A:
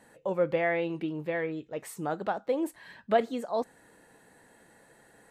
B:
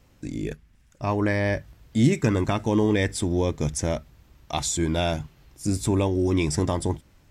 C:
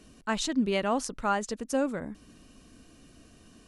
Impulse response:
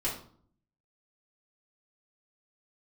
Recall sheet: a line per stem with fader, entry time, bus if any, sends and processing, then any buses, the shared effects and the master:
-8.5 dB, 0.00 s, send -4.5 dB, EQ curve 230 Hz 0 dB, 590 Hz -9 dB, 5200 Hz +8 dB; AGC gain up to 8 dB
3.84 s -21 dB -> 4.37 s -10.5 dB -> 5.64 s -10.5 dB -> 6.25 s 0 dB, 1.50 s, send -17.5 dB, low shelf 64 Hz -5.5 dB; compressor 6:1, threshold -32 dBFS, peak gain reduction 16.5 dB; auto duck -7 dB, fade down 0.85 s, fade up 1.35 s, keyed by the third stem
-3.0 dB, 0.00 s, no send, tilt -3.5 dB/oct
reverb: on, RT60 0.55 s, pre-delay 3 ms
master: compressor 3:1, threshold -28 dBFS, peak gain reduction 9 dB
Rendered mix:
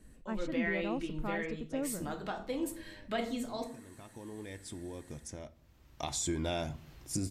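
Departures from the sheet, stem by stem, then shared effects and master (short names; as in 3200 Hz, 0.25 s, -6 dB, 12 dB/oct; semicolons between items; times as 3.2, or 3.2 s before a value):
stem A -8.5 dB -> -15.5 dB; stem C -3.0 dB -> -13.0 dB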